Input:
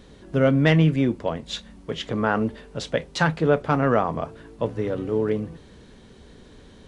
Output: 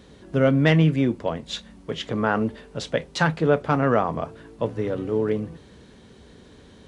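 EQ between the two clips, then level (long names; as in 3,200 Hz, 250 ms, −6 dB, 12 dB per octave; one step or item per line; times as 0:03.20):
high-pass filter 54 Hz
0.0 dB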